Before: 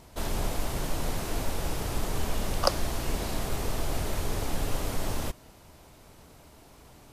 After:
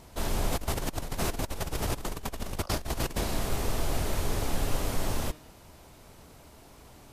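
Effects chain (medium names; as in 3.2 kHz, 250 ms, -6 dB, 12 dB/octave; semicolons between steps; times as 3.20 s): de-hum 153.1 Hz, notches 37; 0.52–3.24 s: compressor with a negative ratio -32 dBFS, ratio -0.5; trim +1 dB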